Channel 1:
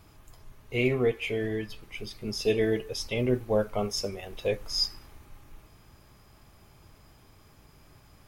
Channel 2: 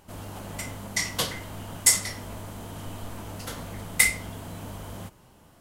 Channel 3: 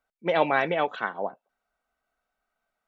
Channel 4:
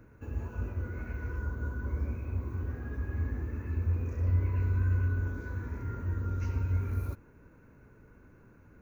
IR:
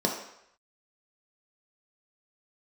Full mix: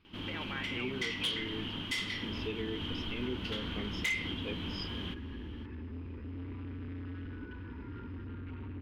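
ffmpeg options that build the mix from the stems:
-filter_complex "[0:a]volume=0.178[s0];[1:a]equalizer=f=3200:t=o:w=0.22:g=9.5,adelay=50,volume=0.562[s1];[2:a]bandpass=f=1500:t=q:w=0.79:csg=0,volume=0.141[s2];[3:a]lowpass=2100,equalizer=f=890:t=o:w=0.21:g=10,asoftclip=type=hard:threshold=0.0188,adelay=2050,volume=0.422[s3];[s0][s1][s2][s3]amix=inputs=4:normalize=0,firequalizer=gain_entry='entry(110,0);entry(290,10);entry(650,-9);entry(920,0);entry(2800,12);entry(7500,-19)':delay=0.05:min_phase=1,asoftclip=type=tanh:threshold=0.119,alimiter=level_in=1.41:limit=0.0631:level=0:latency=1:release=128,volume=0.708"

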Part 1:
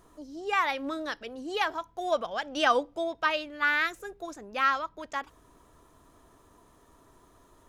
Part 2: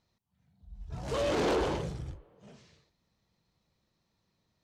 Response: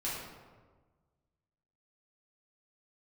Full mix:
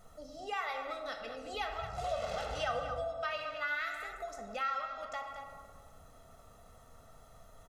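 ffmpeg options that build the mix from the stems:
-filter_complex "[0:a]bandreject=f=50:t=h:w=6,bandreject=f=100:t=h:w=6,volume=0.531,asplit=3[s0][s1][s2];[s1]volume=0.631[s3];[s2]volume=0.335[s4];[1:a]equalizer=f=300:w=0.73:g=-12,adelay=900,volume=0.841,asplit=2[s5][s6];[s6]volume=0.224[s7];[2:a]atrim=start_sample=2205[s8];[s3][s7]amix=inputs=2:normalize=0[s9];[s9][s8]afir=irnorm=-1:irlink=0[s10];[s4]aecho=0:1:222:1[s11];[s0][s5][s10][s11]amix=inputs=4:normalize=0,aecho=1:1:1.5:0.99,acompressor=threshold=0.00708:ratio=2"

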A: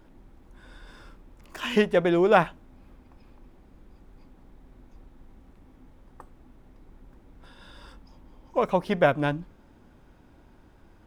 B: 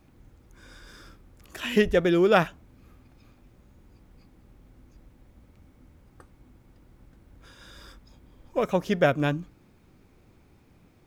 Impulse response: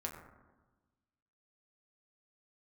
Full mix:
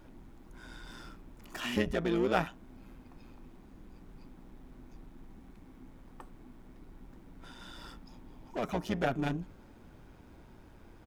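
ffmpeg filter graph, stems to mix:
-filter_complex "[0:a]acompressor=threshold=0.0398:ratio=3,asoftclip=type=tanh:threshold=0.0188,volume=0.944,asplit=2[s0][s1];[1:a]tremolo=f=120:d=0.919,volume=-1,adelay=1.7,volume=1[s2];[s1]apad=whole_len=487876[s3];[s2][s3]sidechaincompress=threshold=0.00794:ratio=8:attack=5:release=179[s4];[s0][s4]amix=inputs=2:normalize=0"

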